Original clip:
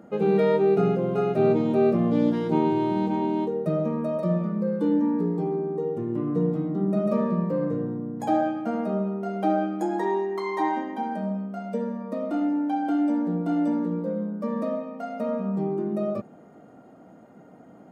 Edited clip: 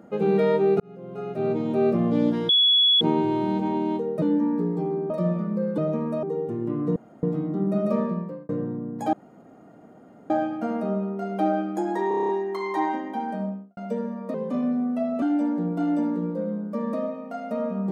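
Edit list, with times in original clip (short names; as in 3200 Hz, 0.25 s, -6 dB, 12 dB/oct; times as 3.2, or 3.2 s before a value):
0.8–1.97 fade in
2.49 add tone 3380 Hz -15 dBFS 0.52 s
3.7–4.15 swap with 4.83–5.71
6.44 insert room tone 0.27 s
7.21–7.7 fade out
8.34 insert room tone 1.17 s
10.12 stutter 0.03 s, 8 plays
11.23–11.6 studio fade out
12.17–12.91 speed 84%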